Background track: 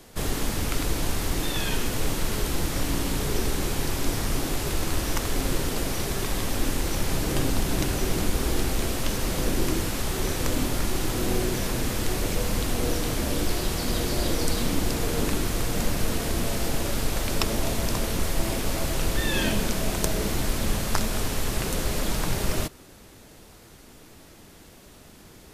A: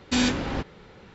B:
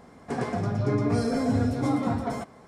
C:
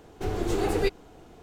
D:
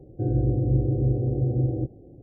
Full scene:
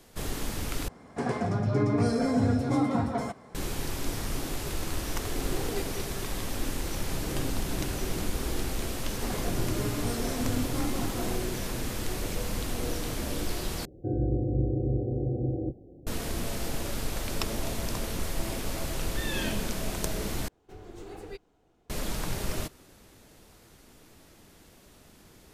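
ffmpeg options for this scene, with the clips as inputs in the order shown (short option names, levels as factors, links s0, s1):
-filter_complex "[2:a]asplit=2[s0][s1];[3:a]asplit=2[s2][s3];[0:a]volume=0.501[s4];[s2]aecho=1:1:198:0.631[s5];[s1]aemphasis=mode=production:type=50fm[s6];[4:a]equalizer=f=120:w=7.5:g=-12[s7];[s4]asplit=4[s8][s9][s10][s11];[s8]atrim=end=0.884[s12];[s0]atrim=end=2.67,asetpts=PTS-STARTPTS,volume=0.944[s13];[s9]atrim=start=3.546:end=13.854[s14];[s7]atrim=end=2.22,asetpts=PTS-STARTPTS,volume=0.794[s15];[s10]atrim=start=16.066:end=20.484[s16];[s3]atrim=end=1.42,asetpts=PTS-STARTPTS,volume=0.141[s17];[s11]atrim=start=21.896[s18];[s5]atrim=end=1.42,asetpts=PTS-STARTPTS,volume=0.251,afade=t=in:d=0.004:c=hsin,afade=t=out:st=1.416:d=0.004:c=hsin,adelay=217413S[s19];[s6]atrim=end=2.67,asetpts=PTS-STARTPTS,volume=0.398,afade=t=in:d=0.004:c=hsin,afade=t=out:st=2.666:d=0.004:c=hsin,adelay=8920[s20];[s12][s13]acrossfade=d=0.004:c1=hsin:c2=hsin[s21];[s21][s14]acrossfade=d=0.004:c1=hsin:c2=hsin[s22];[s22][s15]acrossfade=d=0.004:c1=hsin:c2=hsin[s23];[s23][s16]acrossfade=d=0.004:c1=hsin:c2=hsin[s24];[s24][s17]acrossfade=d=0.004:c1=hsin:c2=hsin[s25];[s25][s18]acrossfade=d=0.004:c1=hsin:c2=hsin[s26];[s26][s19][s20]amix=inputs=3:normalize=0"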